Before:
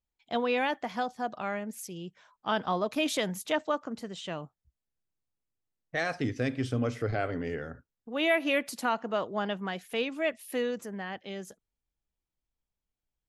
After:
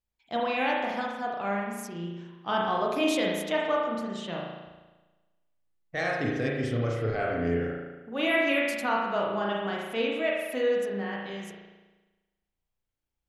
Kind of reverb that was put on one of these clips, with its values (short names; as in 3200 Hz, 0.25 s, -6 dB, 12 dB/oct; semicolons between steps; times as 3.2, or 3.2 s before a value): spring tank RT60 1.2 s, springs 35 ms, chirp 50 ms, DRR -2.5 dB; gain -1.5 dB